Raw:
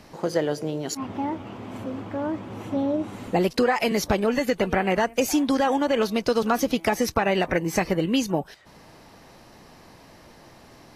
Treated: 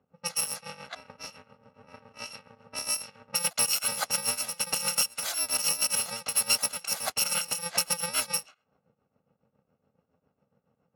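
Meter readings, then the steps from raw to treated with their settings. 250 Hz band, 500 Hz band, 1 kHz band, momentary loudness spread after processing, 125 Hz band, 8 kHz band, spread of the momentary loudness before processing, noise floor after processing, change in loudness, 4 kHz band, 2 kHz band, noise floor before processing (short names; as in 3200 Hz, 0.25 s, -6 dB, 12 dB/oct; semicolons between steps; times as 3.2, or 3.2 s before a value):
-25.5 dB, -19.5 dB, -11.5 dB, 17 LU, -17.0 dB, +9.5 dB, 9 LU, -79 dBFS, -2.5 dB, +3.5 dB, -6.0 dB, -50 dBFS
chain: FFT order left unsorted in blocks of 128 samples; weighting filter A; low-pass opened by the level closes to 380 Hz, open at -24 dBFS; dynamic EQ 720 Hz, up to +6 dB, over -52 dBFS, Q 1.6; in parallel at -4 dB: hard clip -19.5 dBFS, distortion -17 dB; on the sum: tremolo 7.2 Hz, depth 74%; gain -2.5 dB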